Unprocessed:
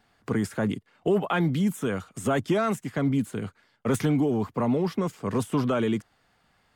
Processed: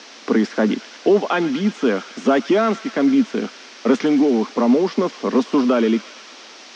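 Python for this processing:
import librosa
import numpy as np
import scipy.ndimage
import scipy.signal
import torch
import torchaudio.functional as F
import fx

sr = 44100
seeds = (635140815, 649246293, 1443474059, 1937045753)

p1 = fx.rider(x, sr, range_db=5, speed_s=0.5)
p2 = x + (p1 * librosa.db_to_amplitude(3.0))
p3 = fx.quant_dither(p2, sr, seeds[0], bits=6, dither='triangular')
p4 = scipy.signal.sosfilt(scipy.signal.cheby1(4, 1.0, [230.0, 5800.0], 'bandpass', fs=sr, output='sos'), p3)
p5 = fx.low_shelf(p4, sr, hz=360.0, db=5.0)
y = fx.echo_wet_highpass(p5, sr, ms=113, feedback_pct=76, hz=1700.0, wet_db=-12.0)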